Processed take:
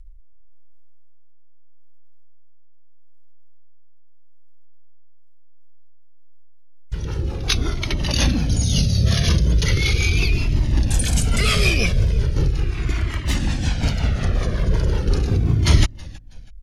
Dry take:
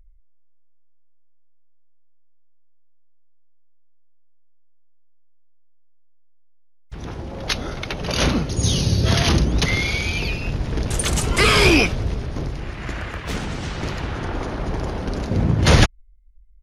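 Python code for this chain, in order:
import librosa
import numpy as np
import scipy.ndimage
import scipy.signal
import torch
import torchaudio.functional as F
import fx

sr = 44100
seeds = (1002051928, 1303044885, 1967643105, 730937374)

p1 = fx.peak_eq(x, sr, hz=890.0, db=-7.5, octaves=2.8)
p2 = fx.over_compress(p1, sr, threshold_db=-25.0, ratio=-1.0)
p3 = p1 + (p2 * 10.0 ** (1.5 / 20.0))
p4 = fx.quant_float(p3, sr, bits=6)
p5 = fx.rotary_switch(p4, sr, hz=0.85, then_hz=5.5, switch_at_s=4.99)
p6 = fx.echo_feedback(p5, sr, ms=323, feedback_pct=31, wet_db=-23.5)
p7 = fx.comb_cascade(p6, sr, direction='falling', hz=0.38)
y = p7 * 10.0 ** (3.5 / 20.0)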